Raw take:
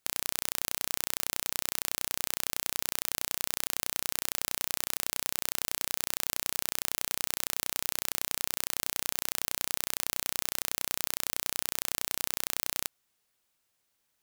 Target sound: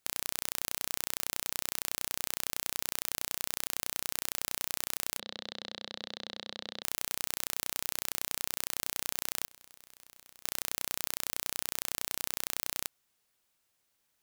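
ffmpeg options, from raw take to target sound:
-filter_complex "[0:a]asettb=1/sr,asplit=3[s0][s1][s2];[s0]atrim=end=9.484[s3];[s1]atrim=start=9.48:end=10.45,asetpts=PTS-STARTPTS,afade=t=in:d=0.004:c=qsin,afade=t=out:st=0.966:d=0.004:c=qsin,aeval=exprs='(mod(3.35*val(0)+1,2)-1)/3.35':c=same[s4];[s2]atrim=start=10.446[s5];[s3][s4]acrossfade=d=0.004:c1=hsin:c2=qsin[s6];[s6][s5]acrossfade=d=0.004:c1=qsin:c2=hsin,aeval=exprs='0.75*(cos(1*acos(clip(val(0)/0.75,-1,1)))-cos(1*PI/2))+0.188*(cos(4*acos(clip(val(0)/0.75,-1,1)))-cos(4*PI/2))+0.0473*(cos(8*acos(clip(val(0)/0.75,-1,1)))-cos(8*PI/2))':c=same,asplit=3[s7][s8][s9];[s7]afade=t=out:st=5.18:d=0.02[s10];[s8]highpass=140,equalizer=f=210:t=q:w=4:g=6,equalizer=f=520:t=q:w=4:g=5,equalizer=f=1000:t=q:w=4:g=-7,equalizer=f=1400:t=q:w=4:g=-5,equalizer=f=2400:t=q:w=4:g=-10,equalizer=f=3900:t=q:w=4:g=8,lowpass=f=4100:w=0.5412,lowpass=f=4100:w=1.3066,afade=t=in:st=5.18:d=0.02,afade=t=out:st=6.82:d=0.02[s11];[s9]afade=t=in:st=6.82:d=0.02[s12];[s10][s11][s12]amix=inputs=3:normalize=0"

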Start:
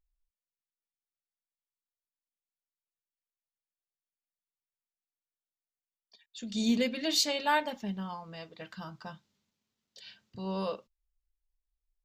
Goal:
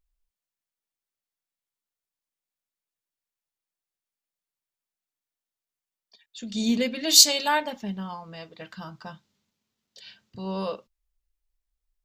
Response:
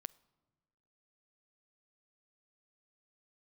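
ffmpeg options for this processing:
-filter_complex "[0:a]asplit=3[s0][s1][s2];[s0]afade=t=out:st=7.07:d=0.02[s3];[s1]bass=f=250:g=-1,treble=f=4000:g=15,afade=t=in:st=7.07:d=0.02,afade=t=out:st=7.47:d=0.02[s4];[s2]afade=t=in:st=7.47:d=0.02[s5];[s3][s4][s5]amix=inputs=3:normalize=0,volume=1.5"

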